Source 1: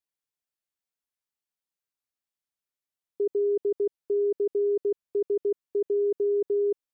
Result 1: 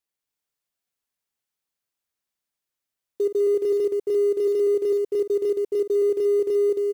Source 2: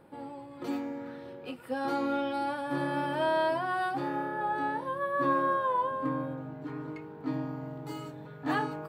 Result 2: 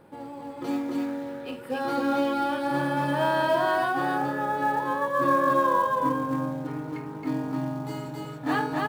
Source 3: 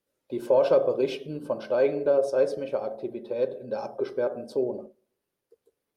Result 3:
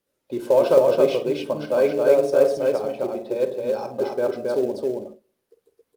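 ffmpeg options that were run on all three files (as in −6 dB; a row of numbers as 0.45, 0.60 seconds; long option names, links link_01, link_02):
-filter_complex "[0:a]aecho=1:1:49.56|271.1:0.282|0.794,asplit=2[link_01][link_02];[link_02]acrusher=bits=4:mode=log:mix=0:aa=0.000001,volume=-7dB[link_03];[link_01][link_03]amix=inputs=2:normalize=0"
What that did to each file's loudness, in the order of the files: +5.0, +5.5, +5.5 LU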